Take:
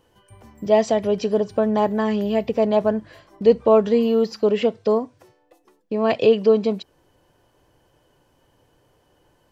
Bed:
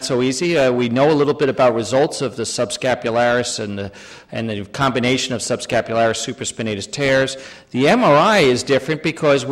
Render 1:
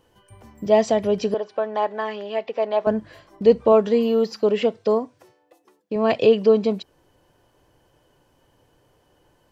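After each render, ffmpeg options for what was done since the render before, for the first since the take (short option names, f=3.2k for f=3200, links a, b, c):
-filter_complex "[0:a]asettb=1/sr,asplit=3[a][b][c];[a]atrim=end=1.344[d];[b]atrim=start=1.34:end=2.87,asetpts=PTS-STARTPTS,afade=t=in:d=0.004:c=qsin,afade=t=out:st=1.526:d=0.004:c=qsin,highpass=570,lowpass=3.9k[e];[c]atrim=start=2.866[f];[d][e]acrossfade=d=0.004:c1=hsin:c2=qsin[g];[g][f]acrossfade=d=0.004:c1=qsin:c2=hsin,asettb=1/sr,asplit=3[h][i][j];[h]atrim=end=3.724[k];[i]atrim=start=3.72:end=5.96,asetpts=PTS-STARTPTS,afade=t=in:d=0.004:c=qsin,afade=t=out:st=2.236:d=0.004:c=qsin,highpass=f=170:p=1[l];[j]atrim=start=5.956[m];[k][l]acrossfade=d=0.004:c1=hsin:c2=qsin[n];[n][m]acrossfade=d=0.004:c1=qsin:c2=hsin"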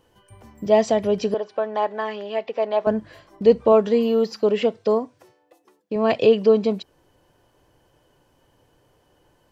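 -af anull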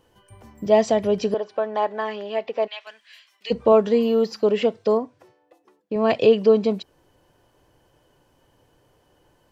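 -filter_complex "[0:a]asplit=3[a][b][c];[a]afade=t=out:st=2.66:d=0.02[d];[b]highpass=f=2.6k:t=q:w=2.2,afade=t=in:st=2.66:d=0.02,afade=t=out:st=3.5:d=0.02[e];[c]afade=t=in:st=3.5:d=0.02[f];[d][e][f]amix=inputs=3:normalize=0,asettb=1/sr,asplit=3[g][h][i];[g]atrim=end=4.974[j];[h]atrim=start=4.97:end=5.96,asetpts=PTS-STARTPTS,afade=t=in:d=0.004:c=qsin,afade=t=out:st=0.986:d=0.004:c=qsin,highshelf=f=4.9k:g=-9[k];[i]atrim=start=5.956[l];[j][k]acrossfade=d=0.004:c1=hsin:c2=qsin[m];[m][l]acrossfade=d=0.004:c1=qsin:c2=hsin"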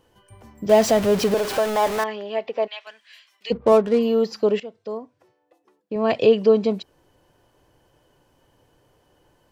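-filter_complex "[0:a]asettb=1/sr,asplit=3[a][b][c];[a]atrim=end=0.694[d];[b]atrim=start=0.69:end=2.04,asetpts=PTS-STARTPTS,afade=t=in:d=0.004:c=qsin,afade=t=out:st=1.346:d=0.004:c=qsin,aeval=exprs='val(0)+0.5*0.075*sgn(val(0))':c=same[e];[c]atrim=start=2.036[f];[d][e]acrossfade=d=0.004:c1=hsin:c2=qsin[g];[g][f]acrossfade=d=0.004:c1=qsin:c2=hsin,asettb=1/sr,asplit=3[h][i][j];[h]atrim=end=3.524[k];[i]atrim=start=3.52:end=3.99,asetpts=PTS-STARTPTS,afade=t=in:d=0.004:c=qsin,afade=t=out:st=0.466:d=0.004:c=qsin,adynamicsmooth=sensitivity=5.5:basefreq=600[l];[j]atrim=start=3.986[m];[k][l]acrossfade=d=0.004:c1=hsin:c2=qsin[n];[n][m]acrossfade=d=0.004:c1=qsin:c2=hsin,asplit=2[o][p];[o]atrim=end=4.6,asetpts=PTS-STARTPTS,afade=t=out:st=4.596:d=0.004:c=hsin:silence=0.125893[q];[p]atrim=start=4.6,asetpts=PTS-STARTPTS,afade=t=in:d=1.69:silence=0.125893[r];[q][r]concat=n=2:v=0:a=1"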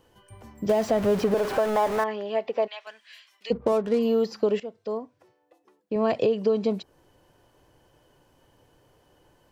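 -filter_complex "[0:a]alimiter=limit=-9.5dB:level=0:latency=1:release=377,acrossover=split=2000|4400[a][b][c];[a]acompressor=threshold=-19dB:ratio=4[d];[b]acompressor=threshold=-49dB:ratio=4[e];[c]acompressor=threshold=-46dB:ratio=4[f];[d][e][f]amix=inputs=3:normalize=0"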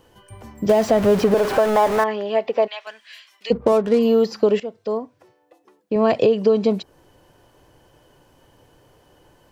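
-af "volume=6.5dB"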